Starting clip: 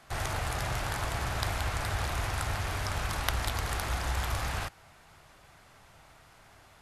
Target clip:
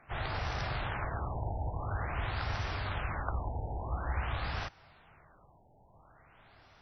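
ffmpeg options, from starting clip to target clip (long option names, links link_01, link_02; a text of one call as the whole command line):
ffmpeg -i in.wav -filter_complex "[0:a]asplit=2[link_01][link_02];[link_02]asetrate=52444,aresample=44100,atempo=0.840896,volume=-11dB[link_03];[link_01][link_03]amix=inputs=2:normalize=0,afftfilt=real='re*lt(b*sr/1024,930*pow(6100/930,0.5+0.5*sin(2*PI*0.48*pts/sr)))':imag='im*lt(b*sr/1024,930*pow(6100/930,0.5+0.5*sin(2*PI*0.48*pts/sr)))':win_size=1024:overlap=0.75,volume=-3dB" out.wav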